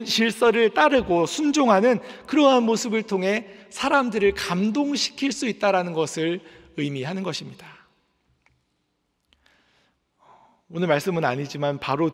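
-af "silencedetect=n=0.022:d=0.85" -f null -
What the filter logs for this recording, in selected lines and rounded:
silence_start: 7.68
silence_end: 10.74 | silence_duration: 3.05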